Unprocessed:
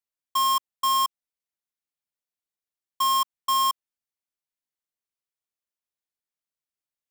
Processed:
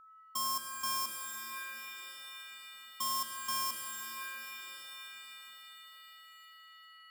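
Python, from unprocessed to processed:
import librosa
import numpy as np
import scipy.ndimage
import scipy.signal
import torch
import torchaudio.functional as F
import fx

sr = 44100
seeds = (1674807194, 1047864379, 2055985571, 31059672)

y = fx.band_shelf(x, sr, hz=1800.0, db=-11.5, octaves=2.4)
y = y + 10.0 ** (-51.0 / 20.0) * np.sin(2.0 * np.pi * 1300.0 * np.arange(len(y)) / sr)
y = fx.low_shelf(y, sr, hz=150.0, db=6.0)
y = fx.rev_shimmer(y, sr, seeds[0], rt60_s=4.0, semitones=7, shimmer_db=-2, drr_db=5.5)
y = F.gain(torch.from_numpy(y), -4.5).numpy()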